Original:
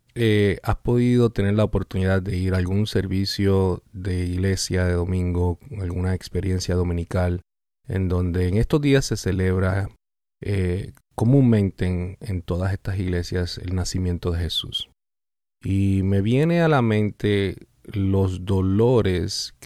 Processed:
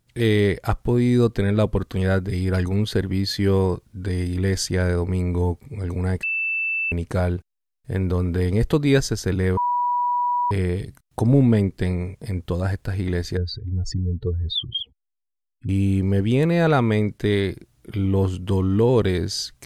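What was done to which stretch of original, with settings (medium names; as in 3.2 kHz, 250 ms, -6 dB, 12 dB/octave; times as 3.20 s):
6.23–6.92 s: bleep 2.65 kHz -21 dBFS
9.57–10.51 s: bleep 975 Hz -18.5 dBFS
13.37–15.69 s: spectral contrast enhancement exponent 2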